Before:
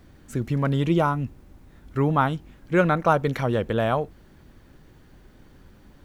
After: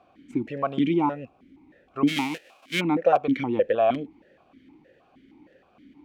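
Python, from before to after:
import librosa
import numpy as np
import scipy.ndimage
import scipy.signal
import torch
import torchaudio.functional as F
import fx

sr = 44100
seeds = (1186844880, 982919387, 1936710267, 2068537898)

p1 = fx.envelope_flatten(x, sr, power=0.1, at=(2.07, 2.79), fade=0.02)
p2 = fx.level_steps(p1, sr, step_db=14)
p3 = p1 + F.gain(torch.from_numpy(p2), -3.0).numpy()
p4 = fx.buffer_crackle(p3, sr, first_s=0.78, period_s=0.79, block=256, kind='repeat')
p5 = fx.vowel_held(p4, sr, hz=6.4)
y = F.gain(torch.from_numpy(p5), 8.0).numpy()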